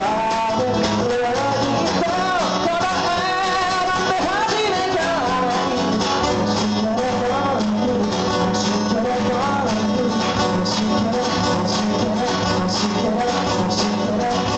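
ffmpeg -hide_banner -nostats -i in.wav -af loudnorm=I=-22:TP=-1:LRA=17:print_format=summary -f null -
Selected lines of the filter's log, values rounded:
Input Integrated:    -19.4 LUFS
Input True Peak:      -7.1 dBTP
Input LRA:             0.5 LU
Input Threshold:     -29.4 LUFS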